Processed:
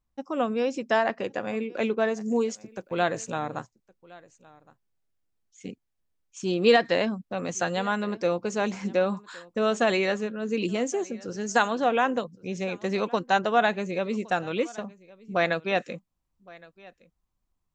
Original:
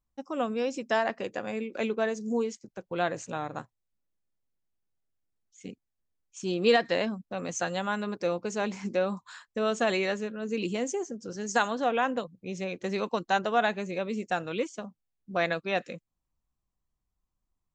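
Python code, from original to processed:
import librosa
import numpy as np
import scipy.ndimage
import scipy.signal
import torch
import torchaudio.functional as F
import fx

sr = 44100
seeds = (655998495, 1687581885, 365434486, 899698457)

y = fx.high_shelf(x, sr, hz=6300.0, db=fx.steps((0.0, -8.5), (2.19, 4.5), (3.38, -4.0)))
y = y + 10.0 ** (-23.0 / 20.0) * np.pad(y, (int(1115 * sr / 1000.0), 0))[:len(y)]
y = y * 10.0 ** (3.5 / 20.0)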